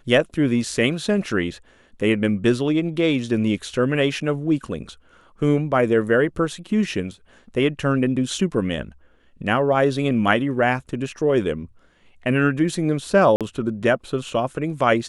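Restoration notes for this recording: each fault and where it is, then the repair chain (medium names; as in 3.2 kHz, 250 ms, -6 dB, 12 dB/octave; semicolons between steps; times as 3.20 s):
13.36–13.41 s: dropout 47 ms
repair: interpolate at 13.36 s, 47 ms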